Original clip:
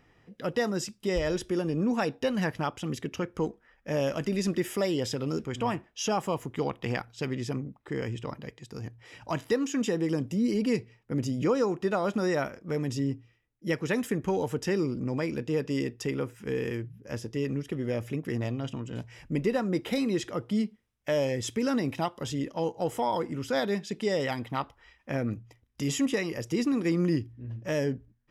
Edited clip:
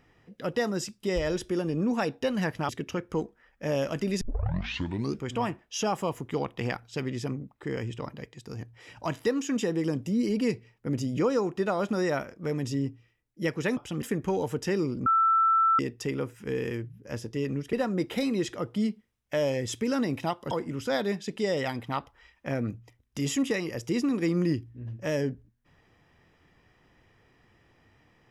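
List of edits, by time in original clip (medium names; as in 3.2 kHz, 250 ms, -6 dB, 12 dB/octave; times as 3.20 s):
2.69–2.94 s: move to 14.02 s
4.46 s: tape start 1.00 s
15.06–15.79 s: bleep 1.33 kHz -19 dBFS
17.73–19.48 s: delete
22.26–23.14 s: delete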